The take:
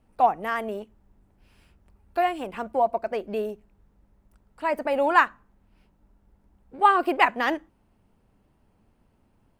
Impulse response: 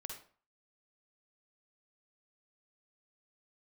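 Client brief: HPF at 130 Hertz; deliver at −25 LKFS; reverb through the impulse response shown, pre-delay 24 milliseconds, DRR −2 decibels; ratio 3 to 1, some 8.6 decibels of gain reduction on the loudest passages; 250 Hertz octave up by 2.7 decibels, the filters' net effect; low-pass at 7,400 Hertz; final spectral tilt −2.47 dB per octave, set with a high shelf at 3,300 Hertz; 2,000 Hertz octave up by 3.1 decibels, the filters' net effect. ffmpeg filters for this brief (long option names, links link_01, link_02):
-filter_complex "[0:a]highpass=130,lowpass=7400,equalizer=frequency=250:width_type=o:gain=4,equalizer=frequency=2000:width_type=o:gain=5.5,highshelf=frequency=3300:gain=-6.5,acompressor=threshold=-24dB:ratio=3,asplit=2[link_01][link_02];[1:a]atrim=start_sample=2205,adelay=24[link_03];[link_02][link_03]afir=irnorm=-1:irlink=0,volume=5dB[link_04];[link_01][link_04]amix=inputs=2:normalize=0,volume=0.5dB"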